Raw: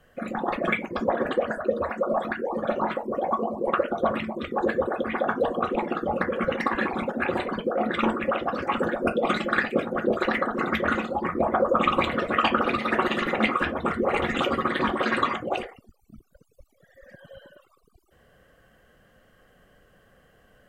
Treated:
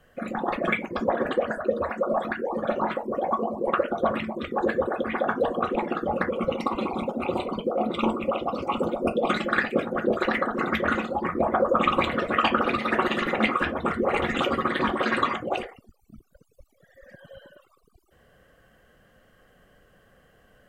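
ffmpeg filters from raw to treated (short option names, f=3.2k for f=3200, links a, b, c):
-filter_complex "[0:a]asettb=1/sr,asplit=3[a][b][c];[a]atrim=end=6.304[d];[b]atrim=start=6.3:end=9.3,asetpts=PTS-STARTPTS,afade=t=in:d=0.004:c=qsin,afade=t=out:st=2.996:d=0.004:c=qsin,asuperstop=centerf=1700:order=4:qfactor=1.5[e];[c]atrim=start=9.296[f];[d][e]acrossfade=d=0.004:c1=hsin:c2=qsin[g];[g][f]acrossfade=d=0.004:c1=qsin:c2=hsin"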